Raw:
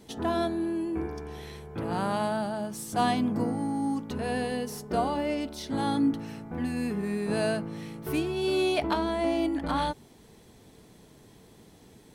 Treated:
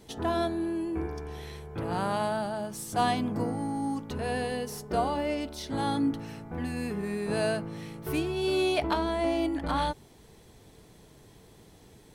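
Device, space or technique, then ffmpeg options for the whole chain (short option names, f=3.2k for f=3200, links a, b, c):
low shelf boost with a cut just above: -af "lowshelf=f=80:g=5,equalizer=f=230:t=o:w=0.65:g=-5"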